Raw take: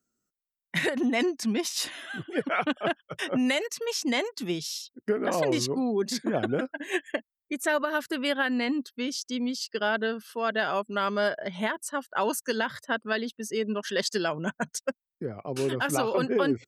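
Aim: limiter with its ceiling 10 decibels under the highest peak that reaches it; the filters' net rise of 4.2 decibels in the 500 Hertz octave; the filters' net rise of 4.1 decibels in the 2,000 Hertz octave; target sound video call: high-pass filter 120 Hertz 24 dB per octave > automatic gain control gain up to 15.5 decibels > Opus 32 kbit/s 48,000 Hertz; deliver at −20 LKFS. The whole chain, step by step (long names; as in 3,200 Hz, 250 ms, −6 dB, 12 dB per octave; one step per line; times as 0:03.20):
parametric band 500 Hz +5 dB
parametric band 2,000 Hz +5 dB
brickwall limiter −20 dBFS
high-pass filter 120 Hz 24 dB per octave
automatic gain control gain up to 15.5 dB
level +7 dB
Opus 32 kbit/s 48,000 Hz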